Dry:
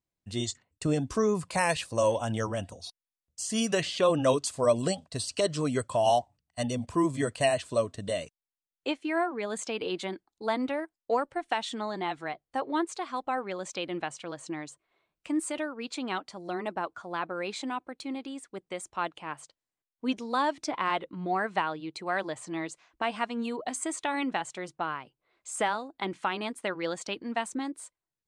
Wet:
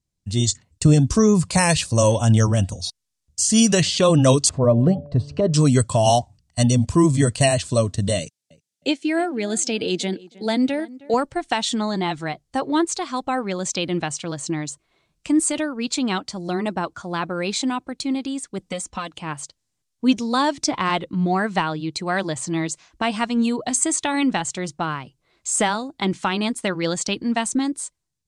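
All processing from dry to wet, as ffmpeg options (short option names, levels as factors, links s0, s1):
-filter_complex "[0:a]asettb=1/sr,asplit=3[s0][s1][s2];[s0]atrim=end=4.494[s3];[s1]atrim=start=4.49:end=5.54,asetpts=PTS-STARTPTS,afade=t=in:d=0.004:c=qsin,afade=t=out:st=1.046:d=0.004:c=qsin,lowpass=1000,bandreject=f=144.4:t=h:w=4,bandreject=f=288.8:t=h:w=4,bandreject=f=433.2:t=h:w=4,bandreject=f=577.6:t=h:w=4,bandreject=f=722:t=h:w=4,acompressor=mode=upward:threshold=0.00891:ratio=2.5:attack=3.2:release=140:knee=2.83:detection=peak[s4];[s2]atrim=start=5.536[s5];[s3][s4]acrossfade=d=0.004:c1=hsin:c2=qsin[s6];[s6][s5]acrossfade=d=0.004:c1=qsin:c2=hsin,asettb=1/sr,asplit=3[s7][s8][s9];[s7]atrim=end=8.194[s10];[s8]atrim=start=8.19:end=11.14,asetpts=PTS-STARTPTS,afade=t=in:d=0.004:c=qsin,afade=t=out:st=2.946:d=0.004:c=qsin,highpass=150,equalizer=f=1100:t=o:w=0.42:g=-15,asplit=2[s11][s12];[s12]adelay=314,lowpass=f=2100:p=1,volume=0.1,asplit=2[s13][s14];[s14]adelay=314,lowpass=f=2100:p=1,volume=0.26[s15];[s11][s13][s15]amix=inputs=3:normalize=0,atrim=end_sample=130095[s16];[s9]atrim=start=11.136[s17];[s10][s16]acrossfade=d=0.004:c1=hsin:c2=qsin[s18];[s18][s17]acrossfade=d=0.004:c1=qsin:c2=hsin,asettb=1/sr,asplit=3[s19][s20][s21];[s19]atrim=end=18.594[s22];[s20]atrim=start=18.59:end=19.12,asetpts=PTS-STARTPTS,afade=t=in:d=0.004:c=qsin,afade=t=out:st=0.526:d=0.004:c=qsin,acrossover=split=3600|7700[s23][s24][s25];[s23]acompressor=threshold=0.0158:ratio=4[s26];[s24]acompressor=threshold=0.00224:ratio=4[s27];[s25]acompressor=threshold=0.00178:ratio=4[s28];[s26][s27][s28]amix=inputs=3:normalize=0,aecho=1:1:4:0.98,atrim=end_sample=23373[s29];[s21]atrim=start=19.116[s30];[s22][s29]acrossfade=d=0.004:c1=hsin:c2=qsin[s31];[s31][s30]acrossfade=d=0.004:c1=qsin:c2=hsin,lowpass=7500,bass=f=250:g=14,treble=f=4000:g=14,dynaudnorm=f=120:g=7:m=2"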